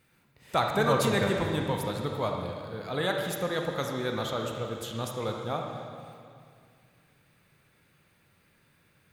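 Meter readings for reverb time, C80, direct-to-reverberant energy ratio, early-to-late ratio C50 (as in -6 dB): 2.3 s, 4.0 dB, 1.5 dB, 2.5 dB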